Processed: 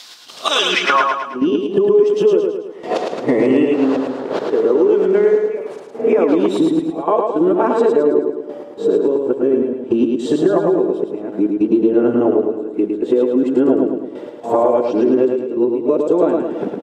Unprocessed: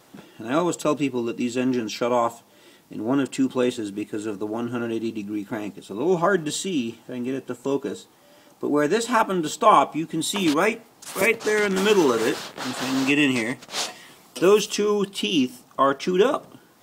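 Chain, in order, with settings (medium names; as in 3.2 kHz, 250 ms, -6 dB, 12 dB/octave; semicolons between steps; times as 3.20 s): reverse the whole clip; band-pass sweep 4.2 kHz -> 440 Hz, 0.63–1.17 s; compression 10:1, threshold -41 dBFS, peak gain reduction 27 dB; trance gate "x.xxxxxx.." 106 bpm -12 dB; on a send: feedback delay 108 ms, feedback 49%, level -4 dB; on the sum: loudness maximiser +31.5 dB; trim -3 dB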